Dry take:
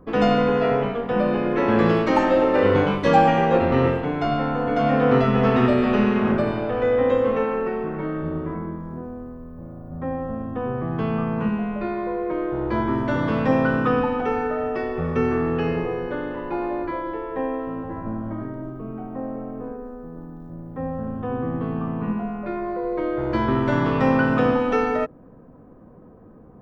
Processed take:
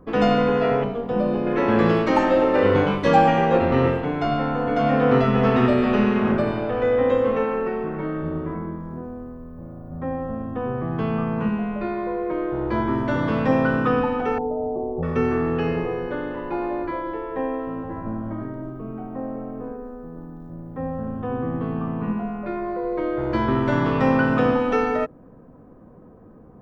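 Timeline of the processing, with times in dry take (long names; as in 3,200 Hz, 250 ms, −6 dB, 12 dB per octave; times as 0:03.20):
0:00.84–0:01.47: parametric band 1,900 Hz −9.5 dB 1.6 octaves
0:14.38–0:15.03: elliptic low-pass filter 870 Hz, stop band 50 dB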